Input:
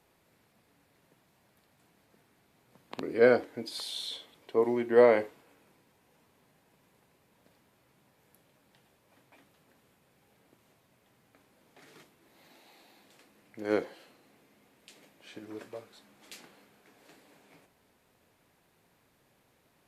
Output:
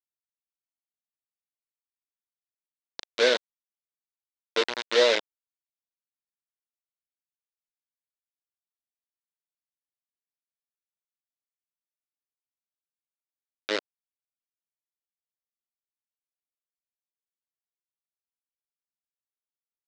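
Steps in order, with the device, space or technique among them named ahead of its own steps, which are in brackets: hand-held game console (bit crusher 4-bit; cabinet simulation 480–5500 Hz, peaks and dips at 760 Hz -9 dB, 1.2 kHz -7 dB, 3.7 kHz +7 dB); trim +2.5 dB

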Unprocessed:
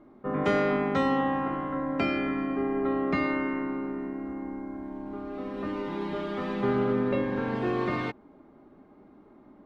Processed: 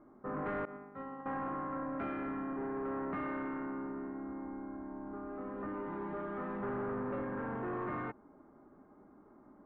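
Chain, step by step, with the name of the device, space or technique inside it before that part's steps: 0.65–1.26 s: expander -14 dBFS; overdriven synthesiser ladder filter (saturation -29 dBFS, distortion -9 dB; four-pole ladder low-pass 1.8 kHz, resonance 35%); trim +1.5 dB

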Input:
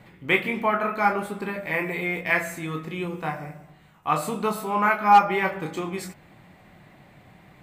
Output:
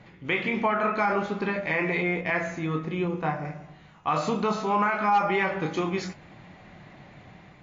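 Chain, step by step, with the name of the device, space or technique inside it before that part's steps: 2.02–3.45 s: peaking EQ 4.9 kHz -7 dB 2.9 oct; low-bitrate web radio (level rider gain up to 3.5 dB; peak limiter -15 dBFS, peak gain reduction 10.5 dB; MP3 40 kbps 16 kHz)

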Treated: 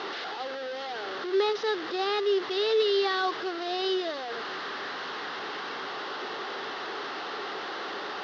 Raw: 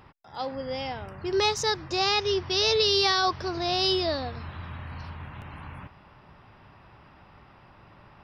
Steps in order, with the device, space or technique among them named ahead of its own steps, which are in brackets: digital answering machine (band-pass 360–3200 Hz; one-bit delta coder 32 kbps, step -26 dBFS; cabinet simulation 350–4400 Hz, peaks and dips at 410 Hz +7 dB, 600 Hz -7 dB, 960 Hz -8 dB, 2.4 kHz -10 dB)

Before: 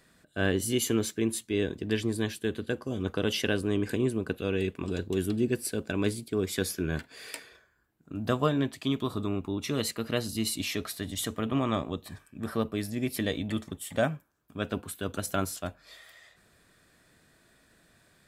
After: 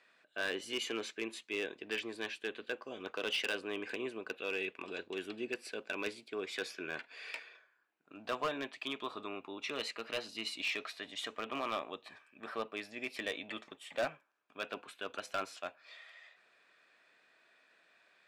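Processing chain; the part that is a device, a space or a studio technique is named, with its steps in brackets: megaphone (band-pass 590–3800 Hz; peaking EQ 2.5 kHz +7.5 dB 0.3 oct; hard clipper -26 dBFS, distortion -12 dB); trim -2.5 dB

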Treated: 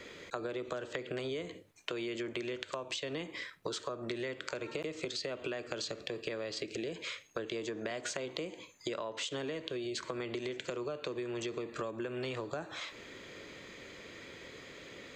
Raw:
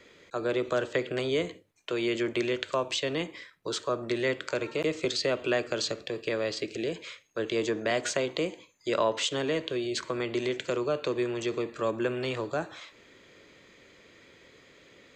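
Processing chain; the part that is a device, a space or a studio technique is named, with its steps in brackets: serial compression, leveller first (compression 2.5:1, threshold -31 dBFS, peak gain reduction 7.5 dB; compression 6:1, threshold -42 dBFS, peak gain reduction 13.5 dB); trim +6 dB

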